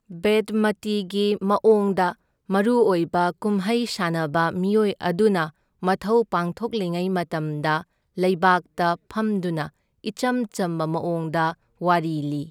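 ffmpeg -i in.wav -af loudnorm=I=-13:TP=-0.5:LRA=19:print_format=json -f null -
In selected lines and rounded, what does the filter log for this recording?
"input_i" : "-23.3",
"input_tp" : "-4.8",
"input_lra" : "3.8",
"input_thresh" : "-33.5",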